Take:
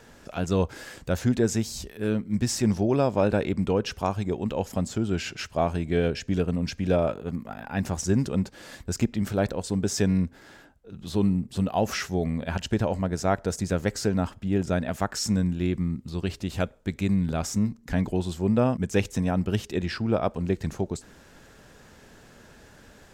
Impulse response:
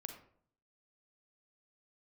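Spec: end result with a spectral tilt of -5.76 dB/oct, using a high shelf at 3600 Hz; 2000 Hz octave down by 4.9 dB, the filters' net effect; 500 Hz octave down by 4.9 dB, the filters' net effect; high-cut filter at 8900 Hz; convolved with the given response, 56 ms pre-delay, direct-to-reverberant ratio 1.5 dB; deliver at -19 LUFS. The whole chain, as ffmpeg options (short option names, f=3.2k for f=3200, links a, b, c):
-filter_complex "[0:a]lowpass=8.9k,equalizer=f=500:t=o:g=-6,equalizer=f=2k:t=o:g=-7.5,highshelf=f=3.6k:g=4,asplit=2[a][b];[1:a]atrim=start_sample=2205,adelay=56[c];[b][c]afir=irnorm=-1:irlink=0,volume=2dB[d];[a][d]amix=inputs=2:normalize=0,volume=7dB"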